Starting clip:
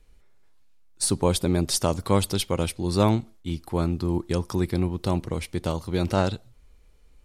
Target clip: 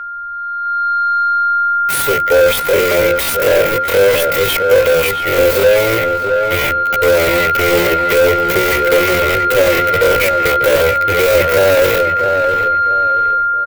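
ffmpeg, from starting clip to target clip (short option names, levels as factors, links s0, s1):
-filter_complex "[0:a]acrossover=split=170[s0][s1];[s0]acompressor=threshold=0.0141:ratio=16[s2];[s1]acrusher=bits=5:mix=0:aa=0.000001[s3];[s2][s3]amix=inputs=2:normalize=0,firequalizer=gain_entry='entry(130,0);entry(180,-20);entry(310,-10);entry(520,11);entry(740,-13);entry(1300,-26);entry(2000,8);entry(5400,-24);entry(14000,15)':delay=0.05:min_phase=1,aeval=exprs='val(0)+0.00708*sin(2*PI*1400*n/s)':c=same,dynaudnorm=f=160:g=5:m=4.47,asplit=2[s4][s5];[s5]highpass=f=720:p=1,volume=35.5,asoftclip=type=tanh:threshold=0.944[s6];[s4][s6]amix=inputs=2:normalize=0,lowpass=f=4400:p=1,volume=0.501,lowshelf=f=130:g=6,bandreject=f=60:t=h:w=6,bandreject=f=120:t=h:w=6,bandreject=f=180:t=h:w=6,bandreject=f=240:t=h:w=6,bandreject=f=300:t=h:w=6,bandreject=f=360:t=h:w=6,asplit=2[s7][s8];[s8]adelay=352,lowpass=f=2300:p=1,volume=0.562,asplit=2[s9][s10];[s10]adelay=352,lowpass=f=2300:p=1,volume=0.35,asplit=2[s11][s12];[s12]adelay=352,lowpass=f=2300:p=1,volume=0.35,asplit=2[s13][s14];[s14]adelay=352,lowpass=f=2300:p=1,volume=0.35[s15];[s9][s11][s13][s15]amix=inputs=4:normalize=0[s16];[s7][s16]amix=inputs=2:normalize=0,atempo=0.53,volume=0.668"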